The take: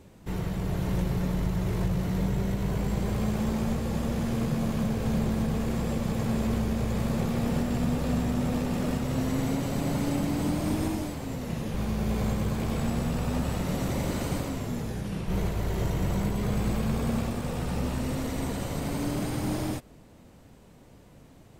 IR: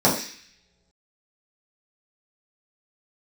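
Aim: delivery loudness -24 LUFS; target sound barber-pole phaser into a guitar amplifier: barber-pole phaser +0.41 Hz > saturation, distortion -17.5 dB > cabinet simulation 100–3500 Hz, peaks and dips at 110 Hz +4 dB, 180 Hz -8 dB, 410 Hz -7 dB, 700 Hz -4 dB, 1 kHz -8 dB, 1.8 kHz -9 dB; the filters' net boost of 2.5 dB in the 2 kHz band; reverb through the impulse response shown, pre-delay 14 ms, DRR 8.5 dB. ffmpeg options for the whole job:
-filter_complex "[0:a]equalizer=f=2000:t=o:g=8.5,asplit=2[s0][s1];[1:a]atrim=start_sample=2205,adelay=14[s2];[s1][s2]afir=irnorm=-1:irlink=0,volume=0.0398[s3];[s0][s3]amix=inputs=2:normalize=0,asplit=2[s4][s5];[s5]afreqshift=0.41[s6];[s4][s6]amix=inputs=2:normalize=1,asoftclip=threshold=0.0708,highpass=100,equalizer=f=110:t=q:w=4:g=4,equalizer=f=180:t=q:w=4:g=-8,equalizer=f=410:t=q:w=4:g=-7,equalizer=f=700:t=q:w=4:g=-4,equalizer=f=1000:t=q:w=4:g=-8,equalizer=f=1800:t=q:w=4:g=-9,lowpass=f=3500:w=0.5412,lowpass=f=3500:w=1.3066,volume=3.55"

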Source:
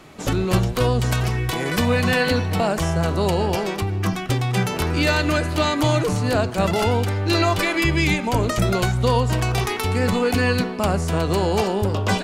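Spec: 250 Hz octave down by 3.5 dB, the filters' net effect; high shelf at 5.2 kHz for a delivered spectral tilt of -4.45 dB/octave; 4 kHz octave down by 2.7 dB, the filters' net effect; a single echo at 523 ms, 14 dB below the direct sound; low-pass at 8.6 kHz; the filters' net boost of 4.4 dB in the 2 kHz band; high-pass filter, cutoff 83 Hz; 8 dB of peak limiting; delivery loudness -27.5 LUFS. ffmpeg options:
-af "highpass=83,lowpass=8600,equalizer=f=250:t=o:g=-5,equalizer=f=2000:t=o:g=7.5,equalizer=f=4000:t=o:g=-3.5,highshelf=f=5200:g=-6.5,alimiter=limit=0.211:level=0:latency=1,aecho=1:1:523:0.2,volume=0.596"

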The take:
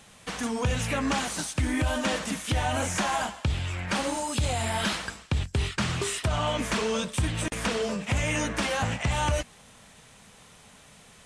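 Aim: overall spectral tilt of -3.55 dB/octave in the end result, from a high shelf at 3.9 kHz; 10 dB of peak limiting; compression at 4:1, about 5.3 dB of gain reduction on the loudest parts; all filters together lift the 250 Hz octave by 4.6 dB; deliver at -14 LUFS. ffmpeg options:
-af "equalizer=f=250:t=o:g=5.5,highshelf=f=3900:g=6.5,acompressor=threshold=0.0501:ratio=4,volume=9.44,alimiter=limit=0.531:level=0:latency=1"

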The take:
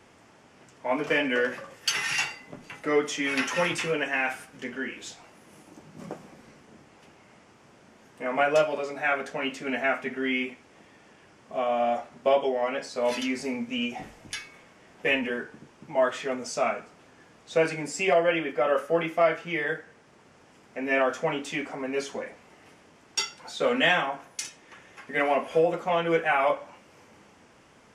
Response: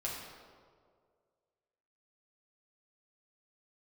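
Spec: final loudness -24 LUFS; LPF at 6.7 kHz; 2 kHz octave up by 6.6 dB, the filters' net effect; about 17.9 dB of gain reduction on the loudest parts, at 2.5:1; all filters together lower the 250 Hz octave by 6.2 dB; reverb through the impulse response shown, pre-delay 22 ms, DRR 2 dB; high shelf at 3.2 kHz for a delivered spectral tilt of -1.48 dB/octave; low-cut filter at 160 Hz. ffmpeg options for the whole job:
-filter_complex "[0:a]highpass=160,lowpass=6700,equalizer=f=250:t=o:g=-7,equalizer=f=2000:t=o:g=5.5,highshelf=f=3200:g=8,acompressor=threshold=0.00794:ratio=2.5,asplit=2[s0][s1];[1:a]atrim=start_sample=2205,adelay=22[s2];[s1][s2]afir=irnorm=-1:irlink=0,volume=0.596[s3];[s0][s3]amix=inputs=2:normalize=0,volume=4.22"

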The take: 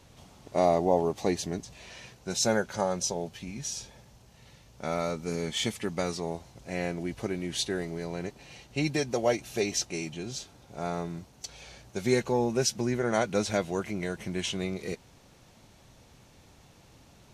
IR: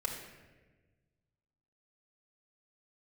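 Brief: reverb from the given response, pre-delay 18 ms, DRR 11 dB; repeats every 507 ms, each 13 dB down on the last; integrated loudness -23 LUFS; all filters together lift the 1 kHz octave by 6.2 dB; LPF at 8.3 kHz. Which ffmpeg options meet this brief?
-filter_complex "[0:a]lowpass=8300,equalizer=f=1000:t=o:g=9,aecho=1:1:507|1014|1521:0.224|0.0493|0.0108,asplit=2[s0][s1];[1:a]atrim=start_sample=2205,adelay=18[s2];[s1][s2]afir=irnorm=-1:irlink=0,volume=0.2[s3];[s0][s3]amix=inputs=2:normalize=0,volume=1.78"

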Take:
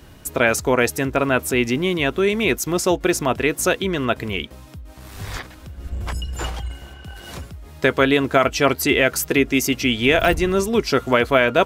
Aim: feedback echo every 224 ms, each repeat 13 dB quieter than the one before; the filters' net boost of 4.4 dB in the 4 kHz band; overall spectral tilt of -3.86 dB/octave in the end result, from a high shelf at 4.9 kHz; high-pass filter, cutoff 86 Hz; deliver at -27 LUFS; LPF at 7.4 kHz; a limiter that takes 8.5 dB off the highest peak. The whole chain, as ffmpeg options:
-af "highpass=86,lowpass=7400,equalizer=f=4000:t=o:g=8,highshelf=f=4900:g=-4,alimiter=limit=0.316:level=0:latency=1,aecho=1:1:224|448|672:0.224|0.0493|0.0108,volume=0.562"

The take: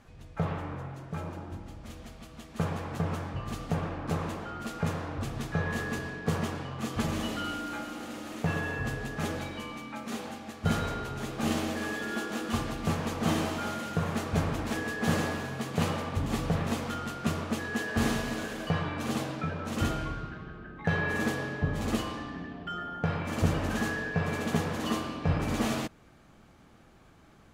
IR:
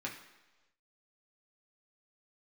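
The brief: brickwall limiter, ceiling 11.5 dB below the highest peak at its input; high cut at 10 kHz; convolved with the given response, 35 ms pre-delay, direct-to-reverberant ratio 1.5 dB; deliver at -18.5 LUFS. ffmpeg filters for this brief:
-filter_complex "[0:a]lowpass=10000,alimiter=limit=0.0708:level=0:latency=1,asplit=2[s0][s1];[1:a]atrim=start_sample=2205,adelay=35[s2];[s1][s2]afir=irnorm=-1:irlink=0,volume=0.708[s3];[s0][s3]amix=inputs=2:normalize=0,volume=5.31"

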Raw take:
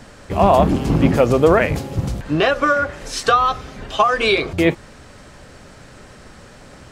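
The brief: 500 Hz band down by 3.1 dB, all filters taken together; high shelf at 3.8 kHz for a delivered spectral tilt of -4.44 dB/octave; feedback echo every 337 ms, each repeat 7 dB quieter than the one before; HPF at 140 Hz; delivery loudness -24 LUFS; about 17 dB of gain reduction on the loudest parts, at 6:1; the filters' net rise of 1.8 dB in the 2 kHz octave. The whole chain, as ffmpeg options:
-af "highpass=140,equalizer=f=500:t=o:g=-4,equalizer=f=2000:t=o:g=3.5,highshelf=f=3800:g=-3,acompressor=threshold=0.0355:ratio=6,aecho=1:1:337|674|1011|1348|1685:0.447|0.201|0.0905|0.0407|0.0183,volume=2.51"

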